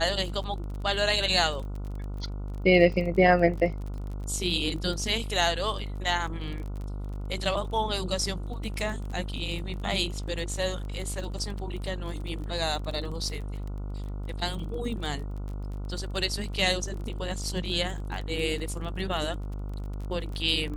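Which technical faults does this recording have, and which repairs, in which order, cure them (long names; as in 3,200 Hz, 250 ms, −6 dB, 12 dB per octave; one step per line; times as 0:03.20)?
mains buzz 50 Hz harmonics 29 −34 dBFS
surface crackle 27 per second −35 dBFS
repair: click removal
hum removal 50 Hz, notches 29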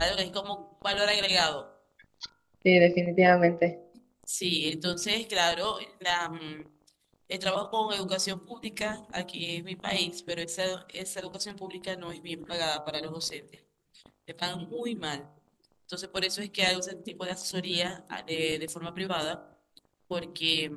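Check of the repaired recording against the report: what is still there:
none of them is left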